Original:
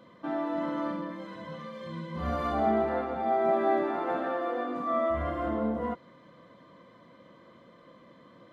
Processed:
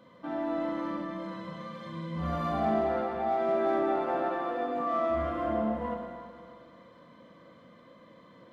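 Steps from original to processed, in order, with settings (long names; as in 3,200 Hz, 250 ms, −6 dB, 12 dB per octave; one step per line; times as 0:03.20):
notch filter 370 Hz, Q 12
in parallel at −8 dB: soft clipping −31.5 dBFS, distortion −8 dB
on the sum: four-comb reverb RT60 2.2 s, combs from 33 ms, DRR 1.5 dB
level −5 dB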